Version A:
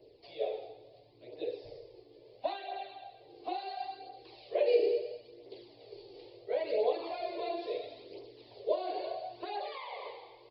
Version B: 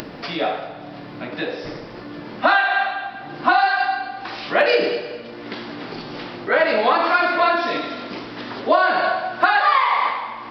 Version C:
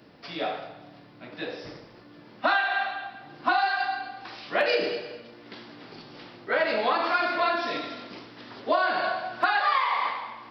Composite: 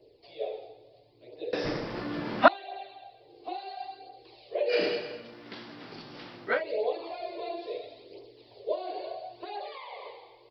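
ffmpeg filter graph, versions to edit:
-filter_complex "[0:a]asplit=3[a][b][c];[a]atrim=end=1.532[d];[1:a]atrim=start=1.528:end=2.482[e];[b]atrim=start=2.478:end=4.78[f];[2:a]atrim=start=4.68:end=6.62[g];[c]atrim=start=6.52[h];[d][e]acrossfade=d=0.004:c1=hsin:c2=hsin[i];[i][f]acrossfade=d=0.004:c1=hsin:c2=hsin[j];[j][g]acrossfade=d=0.1:c1=tri:c2=tri[k];[k][h]acrossfade=d=0.1:c1=tri:c2=tri"

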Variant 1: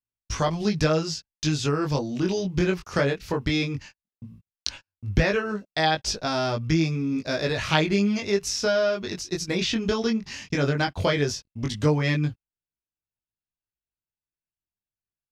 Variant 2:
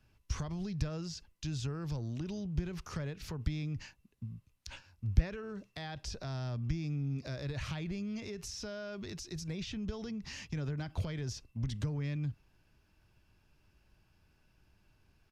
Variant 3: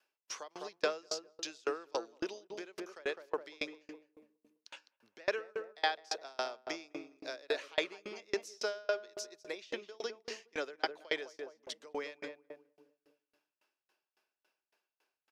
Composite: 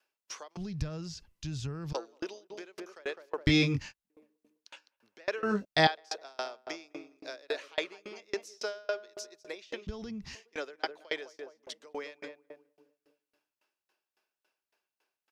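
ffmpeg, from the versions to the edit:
-filter_complex "[1:a]asplit=2[a][b];[0:a]asplit=2[c][d];[2:a]asplit=5[e][f][g][h][i];[e]atrim=end=0.572[j];[a]atrim=start=0.568:end=1.932[k];[f]atrim=start=1.928:end=3.472[l];[c]atrim=start=3.468:end=4.102[m];[g]atrim=start=4.098:end=5.432[n];[d]atrim=start=5.428:end=5.872[o];[h]atrim=start=5.868:end=9.872[p];[b]atrim=start=9.868:end=10.352[q];[i]atrim=start=10.348[r];[j][k]acrossfade=d=0.004:c1=hsin:c2=hsin[s];[s][l]acrossfade=d=0.004:c1=hsin:c2=hsin[t];[t][m]acrossfade=d=0.004:c1=hsin:c2=hsin[u];[u][n]acrossfade=d=0.004:c1=hsin:c2=hsin[v];[v][o]acrossfade=d=0.004:c1=hsin:c2=hsin[w];[w][p]acrossfade=d=0.004:c1=hsin:c2=hsin[x];[x][q]acrossfade=d=0.004:c1=hsin:c2=hsin[y];[y][r]acrossfade=d=0.004:c1=hsin:c2=hsin"

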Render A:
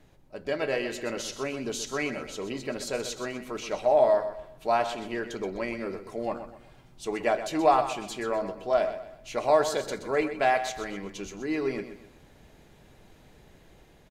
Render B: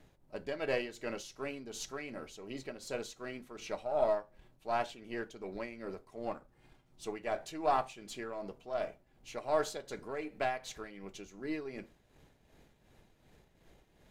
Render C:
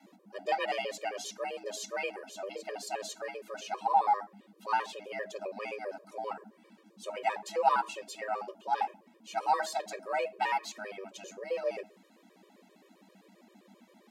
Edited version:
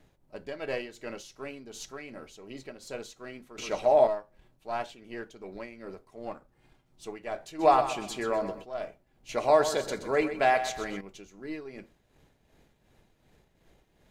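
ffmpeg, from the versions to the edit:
-filter_complex "[0:a]asplit=3[a][b][c];[1:a]asplit=4[d][e][f][g];[d]atrim=end=3.582[h];[a]atrim=start=3.578:end=4.072[i];[e]atrim=start=4.068:end=7.64[j];[b]atrim=start=7.58:end=8.66[k];[f]atrim=start=8.6:end=9.292[l];[c]atrim=start=9.288:end=11.012[m];[g]atrim=start=11.008[n];[h][i]acrossfade=d=0.004:c1=hsin:c2=hsin[o];[o][j]acrossfade=d=0.004:c1=hsin:c2=hsin[p];[p][k]acrossfade=d=0.06:c1=tri:c2=tri[q];[q][l]acrossfade=d=0.06:c1=tri:c2=tri[r];[r][m]acrossfade=d=0.004:c1=hsin:c2=hsin[s];[s][n]acrossfade=d=0.004:c1=hsin:c2=hsin"

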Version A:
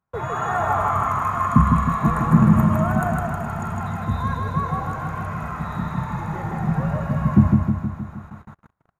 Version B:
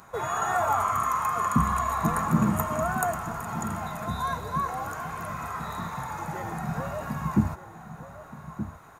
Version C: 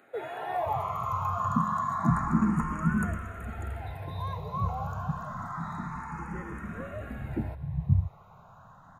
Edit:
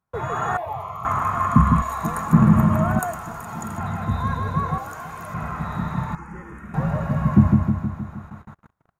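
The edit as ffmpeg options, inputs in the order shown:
-filter_complex "[2:a]asplit=2[a][b];[1:a]asplit=3[c][d][e];[0:a]asplit=6[f][g][h][i][j][k];[f]atrim=end=0.572[l];[a]atrim=start=0.568:end=1.052[m];[g]atrim=start=1.048:end=1.822[n];[c]atrim=start=1.818:end=2.332[o];[h]atrim=start=2.328:end=2.992[p];[d]atrim=start=2.988:end=3.782[q];[i]atrim=start=3.778:end=4.782[r];[e]atrim=start=4.778:end=5.342[s];[j]atrim=start=5.338:end=6.152[t];[b]atrim=start=6.148:end=6.742[u];[k]atrim=start=6.738[v];[l][m]acrossfade=d=0.004:c1=hsin:c2=hsin[w];[w][n]acrossfade=d=0.004:c1=hsin:c2=hsin[x];[x][o]acrossfade=d=0.004:c1=hsin:c2=hsin[y];[y][p]acrossfade=d=0.004:c1=hsin:c2=hsin[z];[z][q]acrossfade=d=0.004:c1=hsin:c2=hsin[aa];[aa][r]acrossfade=d=0.004:c1=hsin:c2=hsin[ab];[ab][s]acrossfade=d=0.004:c1=hsin:c2=hsin[ac];[ac][t]acrossfade=d=0.004:c1=hsin:c2=hsin[ad];[ad][u]acrossfade=d=0.004:c1=hsin:c2=hsin[ae];[ae][v]acrossfade=d=0.004:c1=hsin:c2=hsin"

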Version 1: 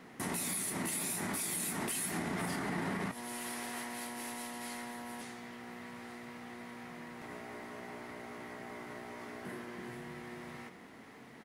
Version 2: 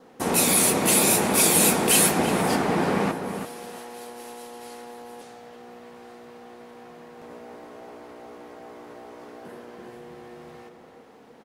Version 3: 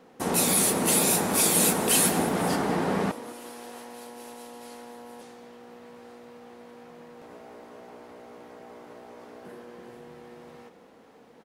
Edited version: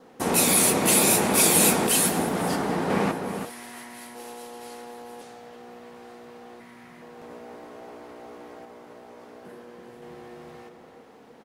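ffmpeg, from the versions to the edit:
-filter_complex "[2:a]asplit=2[a][b];[0:a]asplit=2[c][d];[1:a]asplit=5[e][f][g][h][i];[e]atrim=end=1.872[j];[a]atrim=start=1.868:end=2.902[k];[f]atrim=start=2.898:end=3.502[l];[c]atrim=start=3.498:end=4.152[m];[g]atrim=start=4.148:end=6.602[n];[d]atrim=start=6.598:end=7.022[o];[h]atrim=start=7.018:end=8.652[p];[b]atrim=start=8.648:end=10.022[q];[i]atrim=start=10.018[r];[j][k]acrossfade=d=0.004:c1=hsin:c2=hsin[s];[s][l]acrossfade=d=0.004:c1=hsin:c2=hsin[t];[t][m]acrossfade=d=0.004:c1=hsin:c2=hsin[u];[u][n]acrossfade=d=0.004:c1=hsin:c2=hsin[v];[v][o]acrossfade=d=0.004:c1=hsin:c2=hsin[w];[w][p]acrossfade=d=0.004:c1=hsin:c2=hsin[x];[x][q]acrossfade=d=0.004:c1=hsin:c2=hsin[y];[y][r]acrossfade=d=0.004:c1=hsin:c2=hsin"

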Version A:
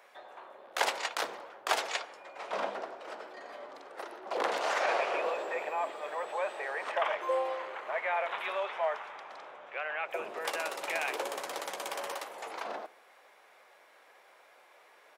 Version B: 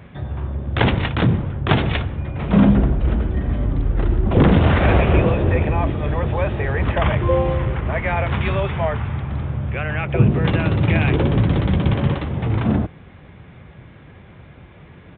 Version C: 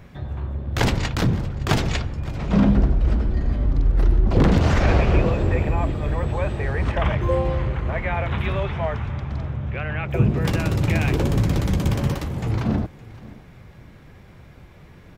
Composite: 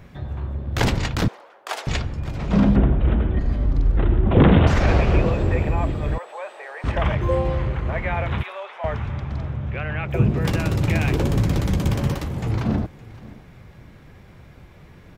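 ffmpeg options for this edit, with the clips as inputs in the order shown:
-filter_complex "[0:a]asplit=3[a][b][c];[1:a]asplit=2[d][e];[2:a]asplit=6[f][g][h][i][j][k];[f]atrim=end=1.282[l];[a]atrim=start=1.278:end=1.872[m];[g]atrim=start=1.868:end=2.762[n];[d]atrim=start=2.758:end=3.392[o];[h]atrim=start=3.388:end=3.972[p];[e]atrim=start=3.968:end=4.672[q];[i]atrim=start=4.668:end=6.182[r];[b]atrim=start=6.178:end=6.842[s];[j]atrim=start=6.838:end=8.432[t];[c]atrim=start=8.428:end=8.842[u];[k]atrim=start=8.838[v];[l][m]acrossfade=d=0.004:c1=hsin:c2=hsin[w];[w][n]acrossfade=d=0.004:c1=hsin:c2=hsin[x];[x][o]acrossfade=d=0.004:c1=hsin:c2=hsin[y];[y][p]acrossfade=d=0.004:c1=hsin:c2=hsin[z];[z][q]acrossfade=d=0.004:c1=hsin:c2=hsin[aa];[aa][r]acrossfade=d=0.004:c1=hsin:c2=hsin[ab];[ab][s]acrossfade=d=0.004:c1=hsin:c2=hsin[ac];[ac][t]acrossfade=d=0.004:c1=hsin:c2=hsin[ad];[ad][u]acrossfade=d=0.004:c1=hsin:c2=hsin[ae];[ae][v]acrossfade=d=0.004:c1=hsin:c2=hsin"

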